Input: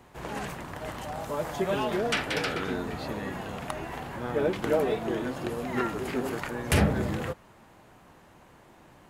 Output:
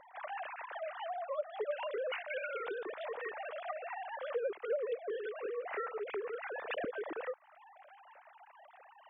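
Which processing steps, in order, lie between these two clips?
formants replaced by sine waves; 0.47–1.14 s: steep high-pass 290 Hz 48 dB/octave; compression 2.5:1, threshold -43 dBFS, peak gain reduction 17.5 dB; trim +2 dB

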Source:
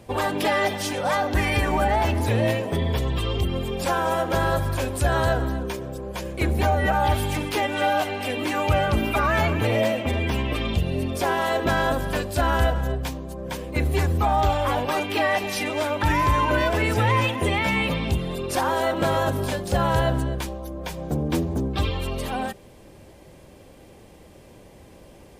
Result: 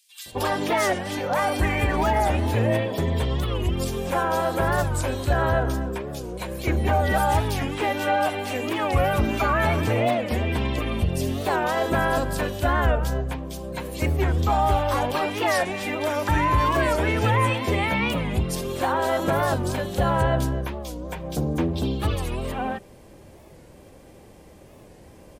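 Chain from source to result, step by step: bands offset in time highs, lows 260 ms, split 3.2 kHz; warped record 45 rpm, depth 160 cents

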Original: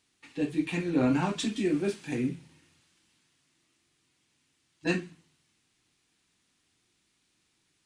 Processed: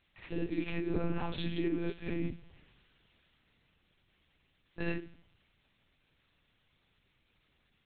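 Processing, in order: reverse echo 62 ms -5.5 dB; monotone LPC vocoder at 8 kHz 170 Hz; compression 2:1, threshold -37 dBFS, peak gain reduction 10.5 dB; trim +1.5 dB

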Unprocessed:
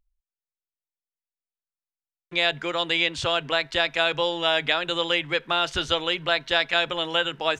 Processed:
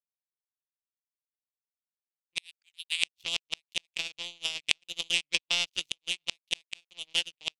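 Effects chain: 2.38–3.03 s: Chebyshev high-pass 1.5 kHz, order 6; on a send: delay 648 ms -22.5 dB; on the sum: power-law waveshaper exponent 3; 3.78–4.71 s: compression 10:1, threshold -37 dBFS, peak gain reduction 13 dB; inverted gate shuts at -17 dBFS, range -37 dB; resonant high shelf 2 kHz +9 dB, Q 3; 5.34–5.90 s: three bands compressed up and down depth 100%; trim -1 dB

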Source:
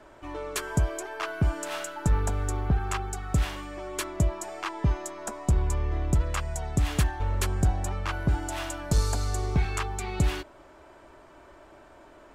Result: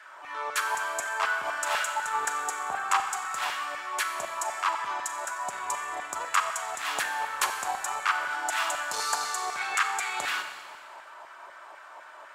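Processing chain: transient shaper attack -7 dB, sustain -2 dB; LFO high-pass saw down 4 Hz 800–1700 Hz; Schroeder reverb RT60 1.7 s, combs from 30 ms, DRR 6 dB; trim +4.5 dB

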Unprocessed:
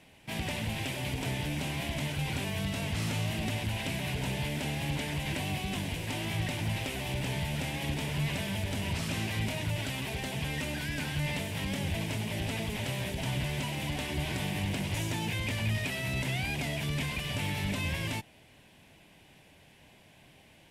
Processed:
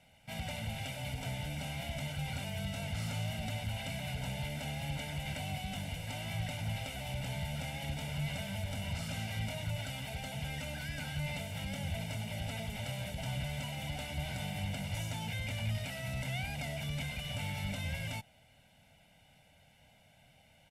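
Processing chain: comb 1.4 ms, depth 89%; trim -8.5 dB

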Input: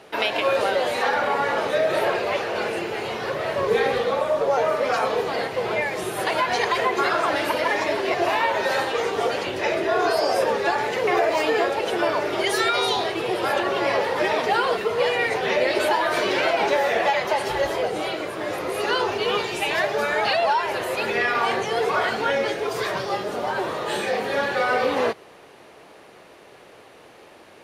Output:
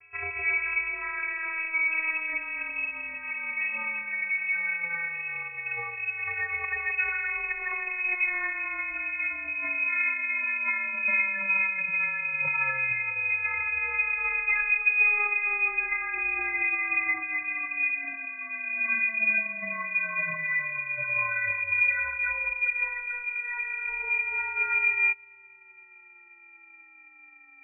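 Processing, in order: vocoder on a note that slides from D#4, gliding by +9 st; frequency inversion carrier 2.9 kHz; trim -5 dB

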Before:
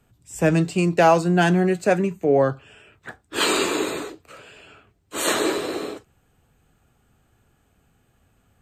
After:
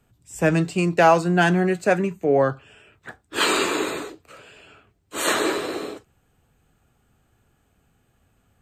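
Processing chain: dynamic bell 1.5 kHz, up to +4 dB, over -33 dBFS, Q 0.76; trim -1.5 dB

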